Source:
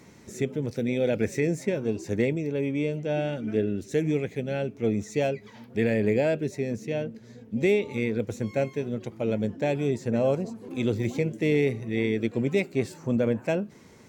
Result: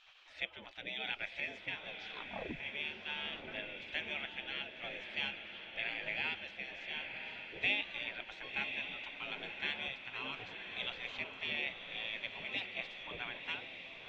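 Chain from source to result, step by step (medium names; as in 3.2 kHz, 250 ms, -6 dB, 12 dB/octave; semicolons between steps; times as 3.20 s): 9.88–10.39 s: high-pass 570 Hz 12 dB/octave; spectral gate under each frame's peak -20 dB weak; gain riding within 4 dB 2 s; 1.88 s: tape stop 0.72 s; four-pole ladder low-pass 3.5 kHz, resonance 60%; echo that smears into a reverb 1049 ms, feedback 49%, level -6.5 dB; trim +5.5 dB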